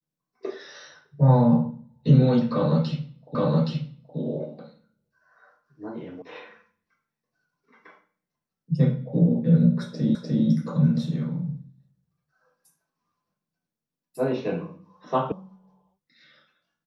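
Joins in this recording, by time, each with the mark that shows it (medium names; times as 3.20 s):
3.35 s: repeat of the last 0.82 s
6.22 s: sound stops dead
10.15 s: repeat of the last 0.3 s
15.32 s: sound stops dead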